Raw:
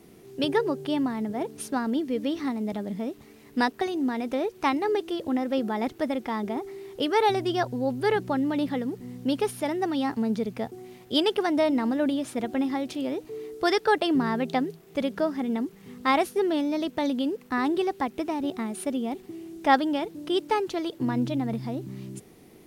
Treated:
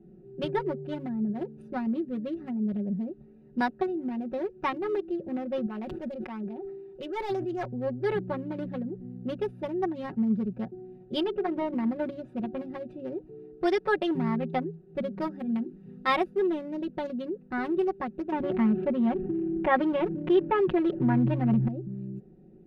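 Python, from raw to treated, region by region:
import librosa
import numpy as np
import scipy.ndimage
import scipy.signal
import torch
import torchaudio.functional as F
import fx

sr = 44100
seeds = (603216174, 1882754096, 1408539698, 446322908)

y = fx.chain(x, sr, fx.clip_hard(threshold_db=-19.5),
    fx.low_shelf(hz=390.0, db=-9.5),
    fx.sustainer(db_per_s=37.0), at=(5.66, 7.66))
y = fx.chain(y, sr, fx.lowpass(hz=1400.0, slope=6),
    fx.low_shelf(hz=68.0, db=9.0),
    fx.hum_notches(base_hz=60, count=8), at=(11.23, 11.74))
y = fx.chain(y, sr, fx.high_shelf(hz=2200.0, db=8.5),
    fx.hum_notches(base_hz=50, count=9), at=(15.21, 16.16))
y = fx.chain(y, sr, fx.lowpass(hz=2800.0, slope=24),
    fx.env_flatten(amount_pct=50), at=(18.32, 21.68))
y = fx.wiener(y, sr, points=41)
y = fx.bass_treble(y, sr, bass_db=5, treble_db=-12)
y = y + 0.92 * np.pad(y, (int(5.4 * sr / 1000.0), 0))[:len(y)]
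y = y * 10.0 ** (-5.0 / 20.0)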